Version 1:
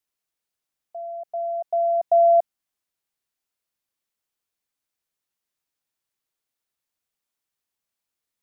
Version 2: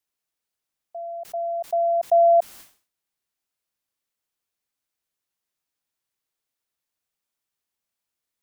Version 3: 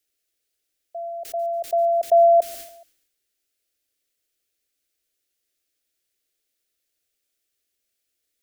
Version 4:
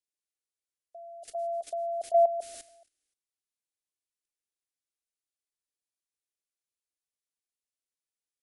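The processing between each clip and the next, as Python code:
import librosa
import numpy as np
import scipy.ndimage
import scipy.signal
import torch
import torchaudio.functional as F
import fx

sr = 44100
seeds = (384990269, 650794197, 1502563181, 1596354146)

y1 = fx.sustainer(x, sr, db_per_s=140.0)
y2 = fx.fixed_phaser(y1, sr, hz=400.0, stages=4)
y2 = fx.echo_feedback(y2, sr, ms=142, feedback_pct=46, wet_db=-20.5)
y2 = F.gain(torch.from_numpy(y2), 7.5).numpy()
y3 = fx.freq_compress(y2, sr, knee_hz=2800.0, ratio=1.5)
y3 = fx.level_steps(y3, sr, step_db=13)
y3 = F.gain(torch.from_numpy(y3), -6.0).numpy()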